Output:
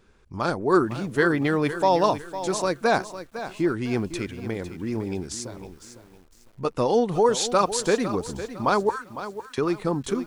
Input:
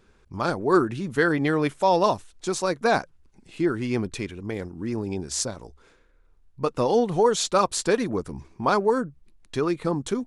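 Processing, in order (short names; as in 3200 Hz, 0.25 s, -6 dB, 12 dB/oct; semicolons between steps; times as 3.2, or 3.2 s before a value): 5.27–6.65 compressor, threshold -32 dBFS, peak gain reduction 9 dB; 8.89–9.58 elliptic high-pass 870 Hz; lo-fi delay 0.505 s, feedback 35%, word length 8-bit, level -12 dB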